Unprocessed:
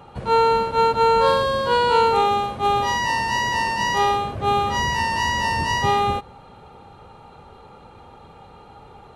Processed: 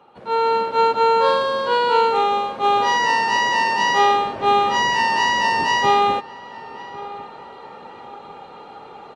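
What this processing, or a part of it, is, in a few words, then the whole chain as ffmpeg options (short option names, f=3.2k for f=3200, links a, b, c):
video call: -filter_complex "[0:a]highpass=f=100:p=1,acrossover=split=200 6600:gain=0.126 1 0.178[a][b][c];[a][b][c]amix=inputs=3:normalize=0,asplit=2[d][e];[e]adelay=1100,lowpass=f=2k:p=1,volume=-19dB,asplit=2[f][g];[g]adelay=1100,lowpass=f=2k:p=1,volume=0.37,asplit=2[h][i];[i]adelay=1100,lowpass=f=2k:p=1,volume=0.37[j];[d][f][h][j]amix=inputs=4:normalize=0,dynaudnorm=f=190:g=5:m=11.5dB,volume=-5dB" -ar 48000 -c:a libopus -b:a 32k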